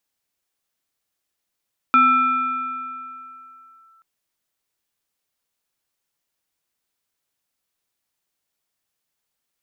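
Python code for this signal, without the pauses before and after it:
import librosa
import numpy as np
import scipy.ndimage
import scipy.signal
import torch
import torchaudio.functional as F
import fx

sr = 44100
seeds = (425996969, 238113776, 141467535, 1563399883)

y = fx.fm2(sr, length_s=2.08, level_db=-9.5, carrier_hz=1330.0, ratio=0.81, index=0.54, index_s=2.03, decay_s=2.87, shape='linear')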